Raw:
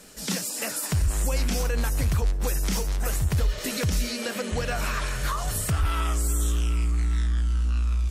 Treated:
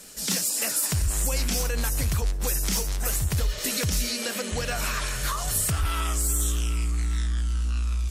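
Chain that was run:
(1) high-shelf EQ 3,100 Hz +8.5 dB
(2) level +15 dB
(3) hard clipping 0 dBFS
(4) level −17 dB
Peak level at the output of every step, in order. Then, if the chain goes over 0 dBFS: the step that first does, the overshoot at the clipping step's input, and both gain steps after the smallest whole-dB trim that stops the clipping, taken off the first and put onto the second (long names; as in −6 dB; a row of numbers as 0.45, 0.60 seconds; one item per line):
−10.0, +5.0, 0.0, −17.0 dBFS
step 2, 5.0 dB
step 2 +10 dB, step 4 −12 dB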